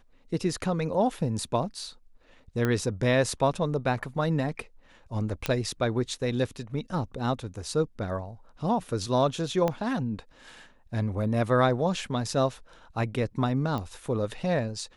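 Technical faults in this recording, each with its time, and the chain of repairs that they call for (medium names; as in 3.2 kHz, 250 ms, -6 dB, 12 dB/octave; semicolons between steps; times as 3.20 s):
2.65 s: pop -14 dBFS
5.46 s: pop -11 dBFS
9.68 s: pop -14 dBFS
13.78 s: pop -21 dBFS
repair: de-click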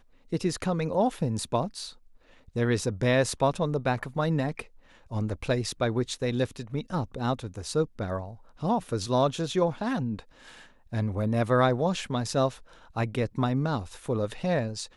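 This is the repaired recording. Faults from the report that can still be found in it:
9.68 s: pop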